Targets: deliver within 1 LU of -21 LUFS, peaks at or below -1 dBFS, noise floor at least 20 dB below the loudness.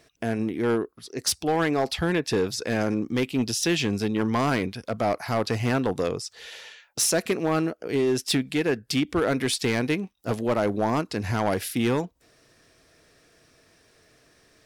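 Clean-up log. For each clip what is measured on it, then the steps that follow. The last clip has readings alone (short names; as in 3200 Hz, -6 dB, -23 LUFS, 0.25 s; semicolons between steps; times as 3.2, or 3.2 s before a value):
clipped 1.1%; flat tops at -17.0 dBFS; loudness -25.5 LUFS; peak -17.0 dBFS; loudness target -21.0 LUFS
-> clip repair -17 dBFS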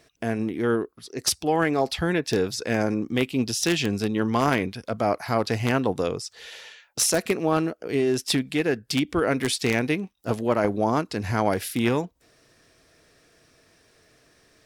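clipped 0.0%; loudness -25.0 LUFS; peak -8.0 dBFS; loudness target -21.0 LUFS
-> gain +4 dB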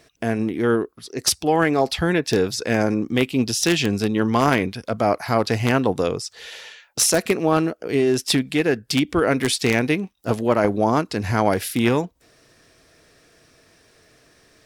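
loudness -21.0 LUFS; peak -4.0 dBFS; noise floor -59 dBFS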